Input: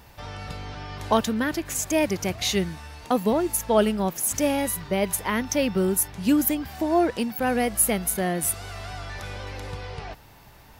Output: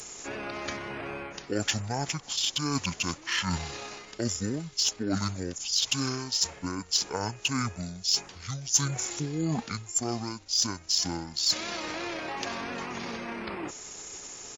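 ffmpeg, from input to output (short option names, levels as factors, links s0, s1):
-af "highpass=f=170:w=0.5412,highpass=f=170:w=1.3066,aemphasis=mode=production:type=bsi,areverse,acompressor=threshold=0.0316:ratio=6,areverse,aeval=exprs='val(0)+0.000562*(sin(2*PI*50*n/s)+sin(2*PI*2*50*n/s)/2+sin(2*PI*3*50*n/s)/3+sin(2*PI*4*50*n/s)/4+sin(2*PI*5*50*n/s)/5)':c=same,asetrate=27781,aresample=44100,atempo=1.5874,aeval=exprs='0.224*(cos(1*acos(clip(val(0)/0.224,-1,1)))-cos(1*PI/2))+0.00631*(cos(2*acos(clip(val(0)/0.224,-1,1)))-cos(2*PI/2))+0.00562*(cos(7*acos(clip(val(0)/0.224,-1,1)))-cos(7*PI/2))':c=same,asetrate=32667,aresample=44100,volume=1.68"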